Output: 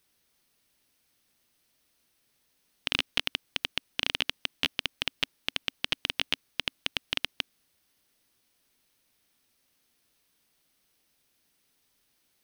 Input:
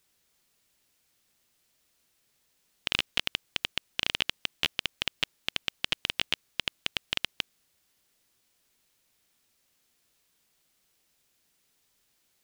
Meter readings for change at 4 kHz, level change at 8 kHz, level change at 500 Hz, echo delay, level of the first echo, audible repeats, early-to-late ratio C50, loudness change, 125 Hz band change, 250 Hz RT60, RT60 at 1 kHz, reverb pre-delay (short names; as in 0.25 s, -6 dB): 0.0 dB, -1.5 dB, +0.5 dB, none, none, none, none, 0.0 dB, 0.0 dB, none, none, none